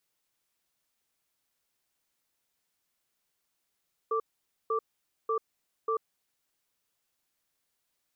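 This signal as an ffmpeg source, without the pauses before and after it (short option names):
-f lavfi -i "aevalsrc='0.0376*(sin(2*PI*446*t)+sin(2*PI*1170*t))*clip(min(mod(t,0.59),0.09-mod(t,0.59))/0.005,0,1)':d=1.99:s=44100"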